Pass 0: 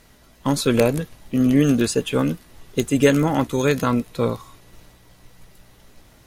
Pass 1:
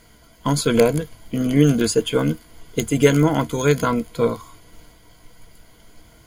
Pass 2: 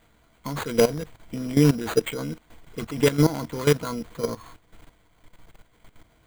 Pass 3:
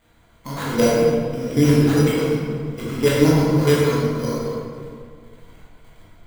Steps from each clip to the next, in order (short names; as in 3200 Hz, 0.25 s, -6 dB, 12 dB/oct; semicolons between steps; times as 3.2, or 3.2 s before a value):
ripple EQ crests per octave 1.8, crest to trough 10 dB
level quantiser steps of 15 dB; sample-rate reducer 5400 Hz, jitter 0%
reverb RT60 2.0 s, pre-delay 14 ms, DRR -7 dB; gain -2.5 dB